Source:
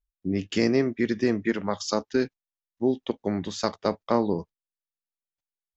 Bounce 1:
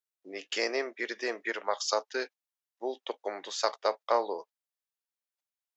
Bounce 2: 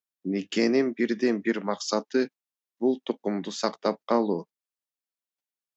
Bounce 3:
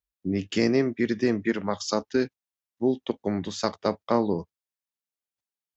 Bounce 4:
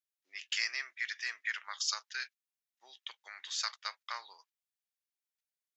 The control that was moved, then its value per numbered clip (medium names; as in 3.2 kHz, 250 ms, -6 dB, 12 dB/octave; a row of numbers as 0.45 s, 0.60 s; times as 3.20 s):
high-pass, cutoff frequency: 510 Hz, 190 Hz, 57 Hz, 1.5 kHz